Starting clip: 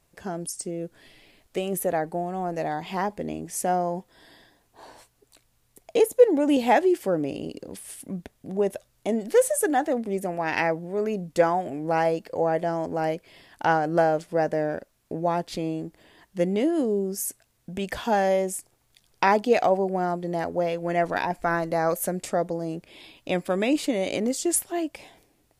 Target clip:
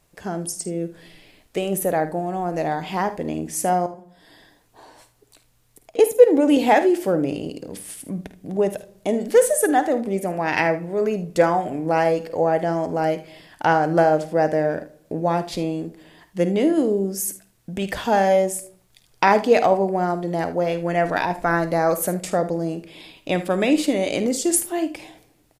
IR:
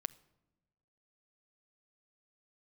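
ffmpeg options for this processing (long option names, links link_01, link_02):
-filter_complex "[0:a]asettb=1/sr,asplit=3[link_01][link_02][link_03];[link_01]atrim=end=3.864[link_04];[link_02]atrim=start=3.86:end=5.99,asetpts=PTS-STARTPTS,afade=type=in:duration=0.004:curve=qsin,afade=type=out:start_time=2.126:duration=0.004:curve=qsin,acompressor=threshold=-50dB:ratio=2.5[link_05];[link_03]atrim=start=5.986[link_06];[link_04][link_05]acrossfade=duration=0.004:curve1=hsin:curve2=qsin[link_07];[link_07][link_06]acrossfade=duration=0.004:curve1=qsin:curve2=hsin,aecho=1:1:51|77:0.211|0.158[link_08];[1:a]atrim=start_sample=2205,afade=type=out:start_time=0.41:duration=0.01,atrim=end_sample=18522[link_09];[link_08][link_09]afir=irnorm=-1:irlink=0,volume=5.5dB"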